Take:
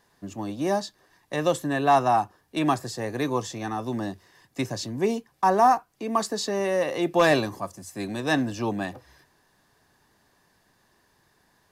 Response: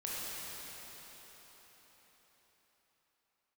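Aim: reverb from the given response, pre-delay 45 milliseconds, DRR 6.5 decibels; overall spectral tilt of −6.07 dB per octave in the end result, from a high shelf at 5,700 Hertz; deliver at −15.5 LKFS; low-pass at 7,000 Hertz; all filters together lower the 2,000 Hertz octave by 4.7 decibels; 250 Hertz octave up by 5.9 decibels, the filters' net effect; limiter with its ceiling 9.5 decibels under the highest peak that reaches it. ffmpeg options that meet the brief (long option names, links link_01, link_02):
-filter_complex "[0:a]lowpass=7000,equalizer=frequency=250:width_type=o:gain=7.5,equalizer=frequency=2000:width_type=o:gain=-5.5,highshelf=frequency=5700:gain=-5,alimiter=limit=-17.5dB:level=0:latency=1,asplit=2[link_01][link_02];[1:a]atrim=start_sample=2205,adelay=45[link_03];[link_02][link_03]afir=irnorm=-1:irlink=0,volume=-10.5dB[link_04];[link_01][link_04]amix=inputs=2:normalize=0,volume=11.5dB"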